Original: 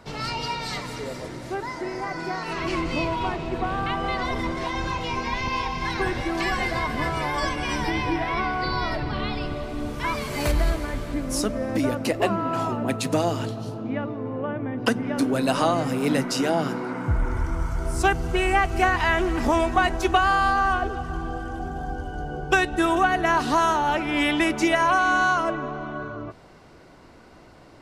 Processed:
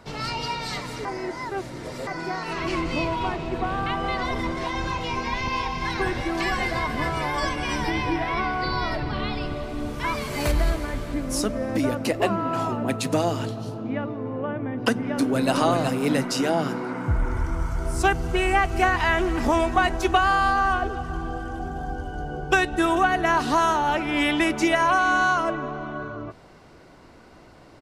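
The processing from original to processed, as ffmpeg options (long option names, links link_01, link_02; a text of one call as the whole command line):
ffmpeg -i in.wav -filter_complex "[0:a]asplit=2[link_01][link_02];[link_02]afade=type=in:start_time=14.98:duration=0.01,afade=type=out:start_time=15.53:duration=0.01,aecho=0:1:370|740|1110:0.562341|0.0843512|0.0126527[link_03];[link_01][link_03]amix=inputs=2:normalize=0,asplit=3[link_04][link_05][link_06];[link_04]atrim=end=1.052[link_07];[link_05]atrim=start=1.048:end=2.072,asetpts=PTS-STARTPTS,areverse[link_08];[link_06]atrim=start=2.068[link_09];[link_07][link_08]acrossfade=duration=0.004:curve1=hsin:curve2=hsin[link_10];[link_10][link_09]acrossfade=duration=0.004:curve1=hsin:curve2=hsin" out.wav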